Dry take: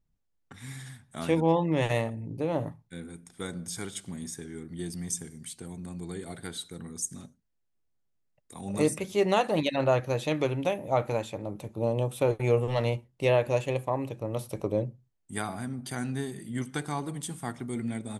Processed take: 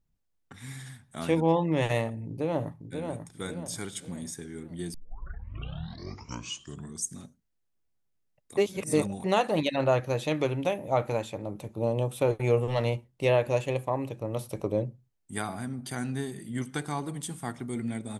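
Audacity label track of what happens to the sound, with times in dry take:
2.260000	3.090000	echo throw 540 ms, feedback 40%, level -6 dB
4.940000	4.940000	tape start 2.13 s
8.570000	9.240000	reverse

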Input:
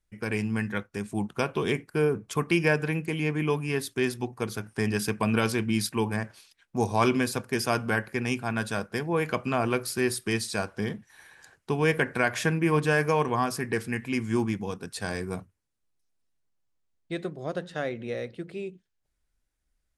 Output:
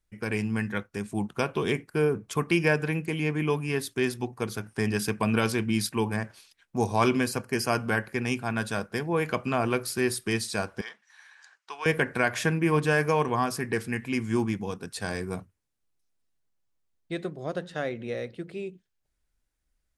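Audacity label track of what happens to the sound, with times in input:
7.270000	7.840000	Butterworth band-stop 3.6 kHz, Q 5.6
10.810000	11.860000	Chebyshev band-pass 1.1–6.1 kHz

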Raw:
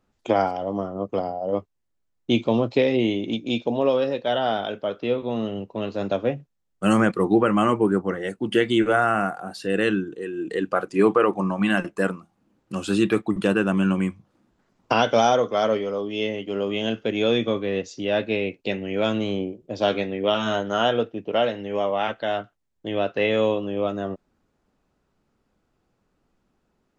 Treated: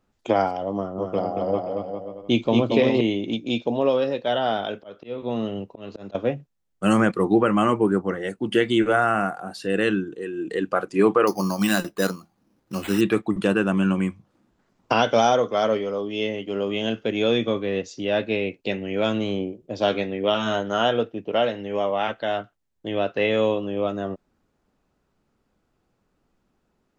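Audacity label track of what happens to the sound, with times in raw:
0.750000	3.010000	bouncing-ball echo first gap 230 ms, each gap 0.75×, echoes 5
4.600000	6.150000	slow attack 244 ms
11.270000	13.010000	careless resampling rate divided by 8×, down none, up hold

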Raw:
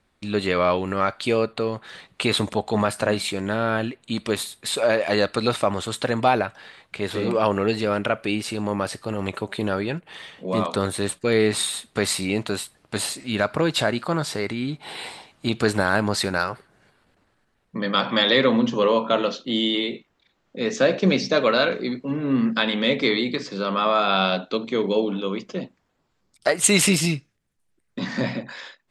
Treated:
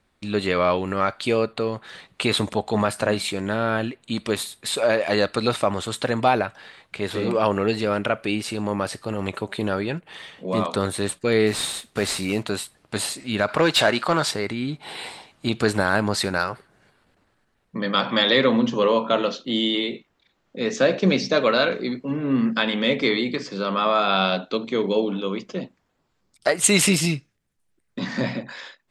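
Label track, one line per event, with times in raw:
11.470000	12.430000	CVSD coder 64 kbps
13.480000	14.310000	overdrive pedal drive 14 dB, tone 5.9 kHz, clips at -7 dBFS
21.960000	23.530000	band-stop 3.9 kHz

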